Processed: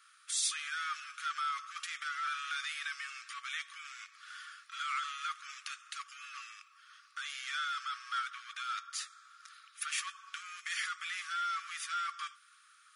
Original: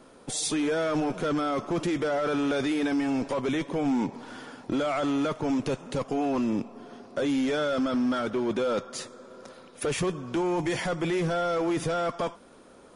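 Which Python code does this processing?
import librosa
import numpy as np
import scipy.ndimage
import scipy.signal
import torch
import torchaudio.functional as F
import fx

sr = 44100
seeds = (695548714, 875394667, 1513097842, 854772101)

y = fx.brickwall_highpass(x, sr, low_hz=1100.0)
y = y * 10.0 ** (-2.0 / 20.0)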